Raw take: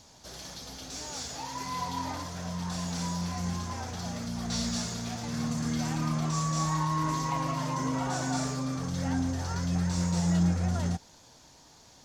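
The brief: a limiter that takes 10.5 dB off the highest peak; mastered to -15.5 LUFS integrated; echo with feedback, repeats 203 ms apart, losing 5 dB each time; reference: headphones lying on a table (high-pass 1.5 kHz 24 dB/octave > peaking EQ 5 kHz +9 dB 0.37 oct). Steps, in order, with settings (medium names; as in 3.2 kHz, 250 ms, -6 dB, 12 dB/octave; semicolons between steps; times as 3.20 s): peak limiter -27.5 dBFS; high-pass 1.5 kHz 24 dB/octave; peaking EQ 5 kHz +9 dB 0.37 oct; feedback delay 203 ms, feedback 56%, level -5 dB; trim +21.5 dB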